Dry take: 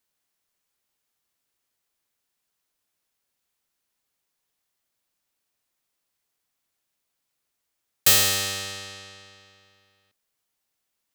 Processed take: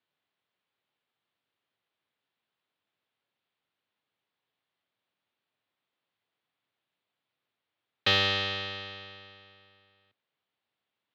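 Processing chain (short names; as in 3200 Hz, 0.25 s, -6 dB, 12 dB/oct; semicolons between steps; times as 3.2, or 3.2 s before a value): elliptic band-pass 100–3600 Hz, stop band 40 dB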